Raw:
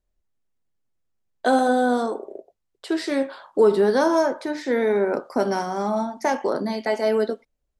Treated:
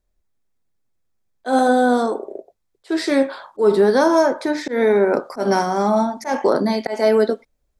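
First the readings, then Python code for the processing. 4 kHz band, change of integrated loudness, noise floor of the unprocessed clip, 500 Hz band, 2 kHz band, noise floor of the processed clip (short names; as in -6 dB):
+4.0 dB, +4.0 dB, -76 dBFS, +4.0 dB, +3.5 dB, -71 dBFS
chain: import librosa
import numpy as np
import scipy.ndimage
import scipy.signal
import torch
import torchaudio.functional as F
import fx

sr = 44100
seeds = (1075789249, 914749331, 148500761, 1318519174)

p1 = fx.auto_swell(x, sr, attack_ms=140.0)
p2 = fx.notch(p1, sr, hz=2900.0, q=11.0)
p3 = fx.rider(p2, sr, range_db=4, speed_s=0.5)
y = p2 + F.gain(torch.from_numpy(p3), -1.0).numpy()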